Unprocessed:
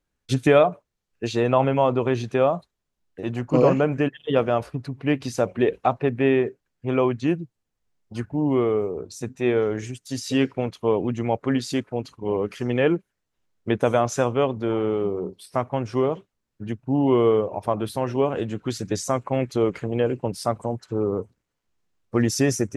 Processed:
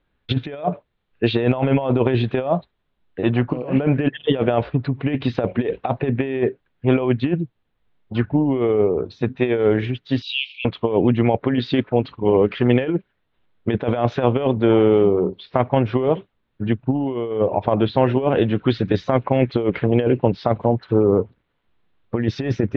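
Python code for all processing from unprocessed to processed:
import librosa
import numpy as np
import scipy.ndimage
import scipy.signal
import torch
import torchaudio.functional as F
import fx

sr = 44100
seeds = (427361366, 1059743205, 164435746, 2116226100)

y = fx.chain(x, sr, fx.steep_highpass(hz=2500.0, slope=96),
    fx.env_flatten(amount_pct=50), at=(10.22, 10.65))
y = scipy.signal.sosfilt(scipy.signal.ellip(4, 1.0, 60, 3700.0, 'lowpass', fs=sr, output='sos'), y)
y = fx.dynamic_eq(y, sr, hz=1200.0, q=2.9, threshold_db=-42.0, ratio=4.0, max_db=-6)
y = fx.over_compress(y, sr, threshold_db=-24.0, ratio=-0.5)
y = y * librosa.db_to_amplitude(7.5)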